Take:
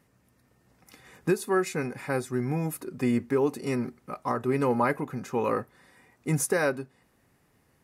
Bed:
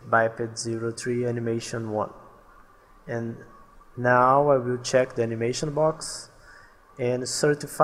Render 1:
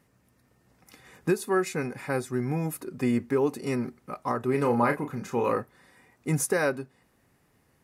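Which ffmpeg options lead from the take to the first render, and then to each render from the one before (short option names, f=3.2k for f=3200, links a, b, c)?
-filter_complex "[0:a]asettb=1/sr,asplit=3[a][b][c];[a]atrim=end=4.514[d];[b]atrim=start=4.51:end=5.56,asetpts=PTS-STARTPTS,afade=t=in:d=0.004:c=qsin,afade=t=out:st=1.046:d=0.004:c=qsin,asplit=2[e][f];[f]adelay=34,volume=-6.5dB[g];[e][g]amix=inputs=2:normalize=0,atrim=end_sample=46305[h];[c]atrim=start=5.556[i];[d][h]acrossfade=d=0.004:c1=hsin:c2=qsin[j];[j][i]acrossfade=d=0.004:c1=qsin:c2=hsin"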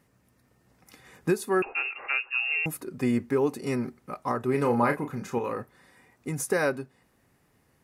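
-filter_complex "[0:a]asettb=1/sr,asplit=3[a][b][c];[a]atrim=end=1.624[d];[b]atrim=start=1.62:end=2.66,asetpts=PTS-STARTPTS,afade=t=in:d=0.004:c=qsin,afade=t=out:st=1.036:d=0.004:c=qsin,lowpass=f=2.5k:t=q:w=0.5098,lowpass=f=2.5k:t=q:w=0.6013,lowpass=f=2.5k:t=q:w=0.9,lowpass=f=2.5k:t=q:w=2.563,afreqshift=-2900[e];[c]atrim=start=2.656[f];[d][e]acrossfade=d=0.004:c1=hsin:c2=qsin[g];[g][f]acrossfade=d=0.004:c1=qsin:c2=hsin,asettb=1/sr,asplit=3[h][i][j];[h]atrim=end=5.384[k];[i]atrim=start=5.38:end=6.47,asetpts=PTS-STARTPTS,afade=t=in:d=0.004:c=qsin,afade=t=out:st=1.086:d=0.004:c=qsin,acompressor=threshold=-27dB:ratio=5:attack=3.2:release=140:knee=1:detection=peak[l];[j]atrim=start=6.466[m];[k][l]acrossfade=d=0.004:c1=hsin:c2=qsin[n];[n][m]acrossfade=d=0.004:c1=qsin:c2=hsin"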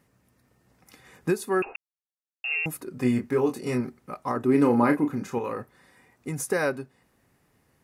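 -filter_complex "[0:a]asettb=1/sr,asplit=3[a][b][c];[a]atrim=end=2.944[d];[b]atrim=start=2.94:end=3.81,asetpts=PTS-STARTPTS,afade=t=in:d=0.004:c=qsin,afade=t=out:st=0.866:d=0.004:c=qsin,asplit=2[e][f];[f]adelay=24,volume=-5.5dB[g];[e][g]amix=inputs=2:normalize=0,atrim=end_sample=38367[h];[c]atrim=start=3.806[i];[d][h]acrossfade=d=0.004:c1=hsin:c2=qsin[j];[j][i]acrossfade=d=0.004:c1=qsin:c2=hsin,asettb=1/sr,asplit=3[k][l][m];[k]atrim=end=4.364[n];[l]atrim=start=4.36:end=5.24,asetpts=PTS-STARTPTS,afade=t=in:d=0.004:c=qsin,afade=t=out:st=0.876:d=0.004:c=qsin,equalizer=f=290:w=2.9:g=11.5[o];[m]atrim=start=5.236[p];[n][o]acrossfade=d=0.004:c1=hsin:c2=qsin[q];[q][p]acrossfade=d=0.004:c1=qsin:c2=hsin,asplit=3[r][s][t];[r]atrim=end=1.76,asetpts=PTS-STARTPTS,afade=t=out:st=1.756:d=0.004:c=hsin[u];[s]atrim=start=1.76:end=2.44,asetpts=PTS-STARTPTS,volume=0[v];[t]atrim=start=2.44,asetpts=PTS-STARTPTS,afade=t=in:d=0.004:c=hsin[w];[u][v][w]concat=n=3:v=0:a=1"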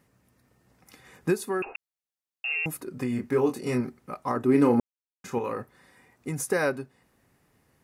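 -filter_complex "[0:a]asettb=1/sr,asplit=3[a][b][c];[a]atrim=end=1.384[d];[b]atrim=start=1.38:end=3.2,asetpts=PTS-STARTPTS,afade=t=in:d=0.004:c=qsin,afade=t=out:st=1.816:d=0.004:c=qsin,acompressor=threshold=-24dB:ratio=6:attack=3.2:release=140:knee=1:detection=peak[e];[c]atrim=start=3.196[f];[d][e]acrossfade=d=0.004:c1=hsin:c2=qsin[g];[g][f]acrossfade=d=0.004:c1=qsin:c2=hsin,asplit=3[h][i][j];[h]atrim=end=4.8,asetpts=PTS-STARTPTS,afade=t=out:st=4.796:d=0.004:c=hsin[k];[i]atrim=start=4.8:end=5.24,asetpts=PTS-STARTPTS,volume=0[l];[j]atrim=start=5.24,asetpts=PTS-STARTPTS,afade=t=in:d=0.004:c=hsin[m];[k][l][m]concat=n=3:v=0:a=1"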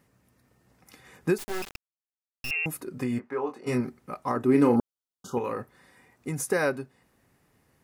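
-filter_complex "[0:a]asettb=1/sr,asplit=3[a][b][c];[a]atrim=end=1.384[d];[b]atrim=start=1.38:end=2.51,asetpts=PTS-STARTPTS,afade=t=in:d=0.004:c=qsin,afade=t=out:st=1.126:d=0.004:c=qsin,acrusher=bits=3:dc=4:mix=0:aa=0.000001[e];[c]atrim=start=2.506[f];[d][e]acrossfade=d=0.004:c1=hsin:c2=qsin[g];[g][f]acrossfade=d=0.004:c1=qsin:c2=hsin,asplit=3[h][i][j];[h]afade=t=out:st=3.18:d=0.02[k];[i]bandpass=f=1k:t=q:w=1,afade=t=in:st=3.18:d=0.02,afade=t=out:st=3.66:d=0.02[l];[j]afade=t=in:st=3.66:d=0.02[m];[k][l][m]amix=inputs=3:normalize=0,asettb=1/sr,asplit=3[n][o][p];[n]atrim=end=4.764[q];[o]atrim=start=4.76:end=5.37,asetpts=PTS-STARTPTS,afade=t=in:d=0.004:c=qsin,afade=t=out:st=0.606:d=0.004:c=qsin,asuperstop=centerf=2100:order=20:qfactor=1.5[r];[p]atrim=start=5.366[s];[q][r]acrossfade=d=0.004:c1=hsin:c2=qsin[t];[t][s]acrossfade=d=0.004:c1=qsin:c2=hsin"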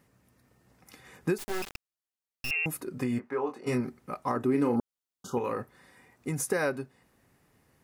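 -af "acompressor=threshold=-25dB:ratio=2.5"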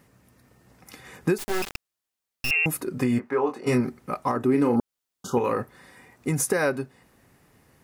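-af "acontrast=81,alimiter=limit=-12dB:level=0:latency=1:release=410"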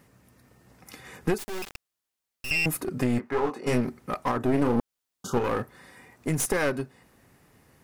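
-af "aeval=exprs='clip(val(0),-1,0.0398)':c=same"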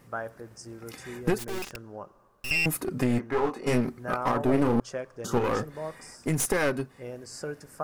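-filter_complex "[1:a]volume=-14dB[a];[0:a][a]amix=inputs=2:normalize=0"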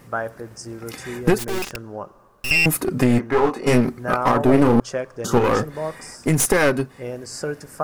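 -af "volume=8.5dB"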